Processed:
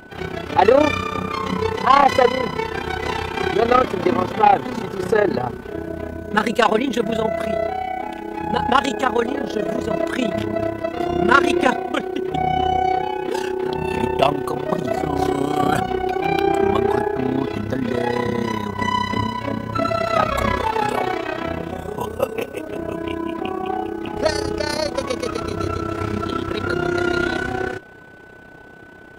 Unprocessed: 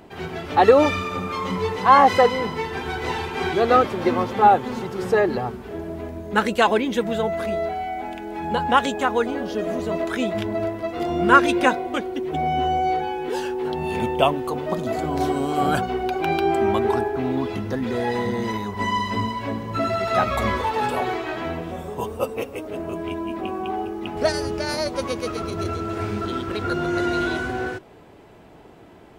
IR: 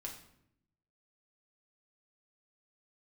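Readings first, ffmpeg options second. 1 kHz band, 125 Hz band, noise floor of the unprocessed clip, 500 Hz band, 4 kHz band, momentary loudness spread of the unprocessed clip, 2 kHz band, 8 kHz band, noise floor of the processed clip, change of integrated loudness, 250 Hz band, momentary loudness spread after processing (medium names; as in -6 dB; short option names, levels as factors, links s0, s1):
+1.5 dB, +2.5 dB, -45 dBFS, +2.0 dB, +2.5 dB, 12 LU, +2.0 dB, +2.5 dB, -40 dBFS, +1.5 dB, +2.5 dB, 10 LU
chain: -af "acontrast=87,tremolo=f=32:d=0.75,aeval=exprs='val(0)+0.00708*sin(2*PI*1500*n/s)':c=same,volume=0.891"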